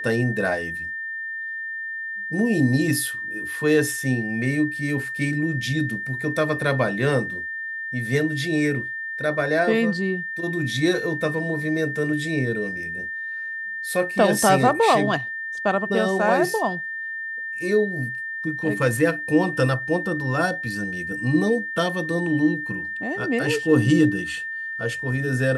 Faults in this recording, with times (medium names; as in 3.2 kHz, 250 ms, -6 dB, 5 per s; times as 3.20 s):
whine 1.8 kHz -28 dBFS